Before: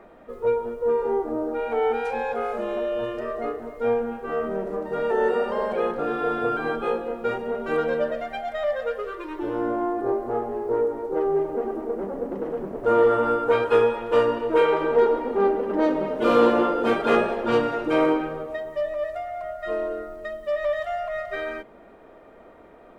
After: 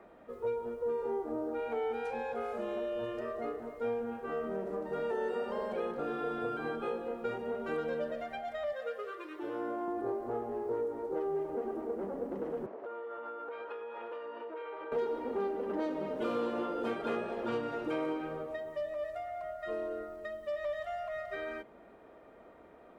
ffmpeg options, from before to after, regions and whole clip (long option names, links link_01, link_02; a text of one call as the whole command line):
ffmpeg -i in.wav -filter_complex "[0:a]asettb=1/sr,asplit=3[link_01][link_02][link_03];[link_01]atrim=end=8.724[link_04];[link_02]atrim=start=8.72:end=9.88,asetpts=PTS-STARTPTS,afade=type=in:duration=0.004:curve=qsin,afade=type=out:start_time=1.156:duration=0.004:curve=qsin,highpass=frequency=410:poles=1,bandreject=frequency=930:width=11[link_05];[link_03]atrim=start=9.876[link_06];[link_04][link_05]acrossfade=duration=0.004:curve1=hsin:curve2=qsin[link_07];[link_07][link_06]acrossfade=duration=0.004:curve1=qsin:curve2=hsin,asettb=1/sr,asplit=3[link_08][link_09][link_10];[link_08]atrim=end=12.664[link_11];[link_09]atrim=start=12.66:end=14.92,asetpts=PTS-STARTPTS,afade=type=in:duration=0.004:curve=qsin,afade=type=out:start_time=2.256:duration=0.004:curve=qsin,acompressor=threshold=-29dB:ratio=20:attack=3.2:release=140:knee=1:detection=peak,highpass=440,lowpass=3100[link_12];[link_10]atrim=start=14.916[link_13];[link_11][link_12]acrossfade=duration=0.004:curve1=hsin:curve2=qsin[link_14];[link_14][link_13]acrossfade=duration=0.004:curve1=qsin:curve2=hsin,highpass=42,acrossover=split=450|3000[link_15][link_16][link_17];[link_15]acompressor=threshold=-29dB:ratio=4[link_18];[link_16]acompressor=threshold=-31dB:ratio=4[link_19];[link_17]acompressor=threshold=-50dB:ratio=4[link_20];[link_18][link_19][link_20]amix=inputs=3:normalize=0,volume=-7dB" out.wav